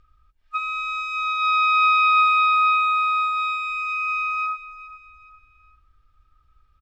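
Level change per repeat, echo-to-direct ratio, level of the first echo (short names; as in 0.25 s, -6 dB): -8.0 dB, -15.5 dB, -16.0 dB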